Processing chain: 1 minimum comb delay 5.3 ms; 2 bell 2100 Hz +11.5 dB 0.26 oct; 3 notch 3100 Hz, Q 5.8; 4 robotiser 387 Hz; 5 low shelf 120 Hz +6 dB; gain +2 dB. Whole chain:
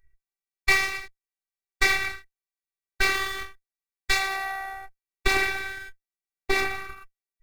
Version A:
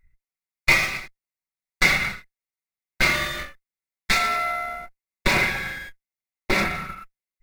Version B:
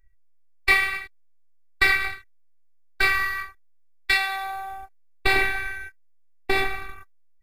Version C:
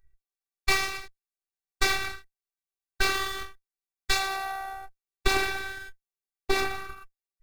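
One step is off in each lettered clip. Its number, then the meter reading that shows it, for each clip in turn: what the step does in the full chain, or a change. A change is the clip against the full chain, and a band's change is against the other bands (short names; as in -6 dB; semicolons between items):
4, 125 Hz band +7.0 dB; 1, 8 kHz band -8.0 dB; 2, 2 kHz band -5.0 dB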